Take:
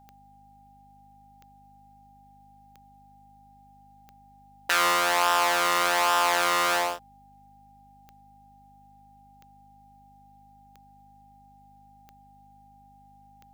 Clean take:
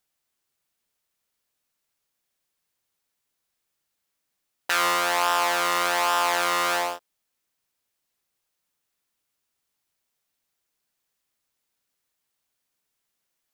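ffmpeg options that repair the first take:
-af "adeclick=t=4,bandreject=f=50.7:t=h:w=4,bandreject=f=101.4:t=h:w=4,bandreject=f=152.1:t=h:w=4,bandreject=f=202.8:t=h:w=4,bandreject=f=253.5:t=h:w=4,bandreject=f=800:w=30"

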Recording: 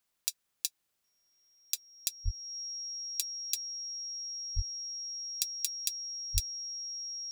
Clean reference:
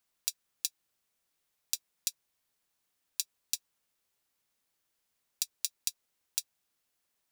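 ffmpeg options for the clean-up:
-filter_complex "[0:a]bandreject=f=5.6k:w=30,asplit=3[a][b][c];[a]afade=t=out:st=2.24:d=0.02[d];[b]highpass=f=140:w=0.5412,highpass=f=140:w=1.3066,afade=t=in:st=2.24:d=0.02,afade=t=out:st=2.36:d=0.02[e];[c]afade=t=in:st=2.36:d=0.02[f];[d][e][f]amix=inputs=3:normalize=0,asplit=3[g][h][i];[g]afade=t=out:st=4.55:d=0.02[j];[h]highpass=f=140:w=0.5412,highpass=f=140:w=1.3066,afade=t=in:st=4.55:d=0.02,afade=t=out:st=4.67:d=0.02[k];[i]afade=t=in:st=4.67:d=0.02[l];[j][k][l]amix=inputs=3:normalize=0,asplit=3[m][n][o];[m]afade=t=out:st=6.33:d=0.02[p];[n]highpass=f=140:w=0.5412,highpass=f=140:w=1.3066,afade=t=in:st=6.33:d=0.02,afade=t=out:st=6.45:d=0.02[q];[o]afade=t=in:st=6.45:d=0.02[r];[p][q][r]amix=inputs=3:normalize=0"

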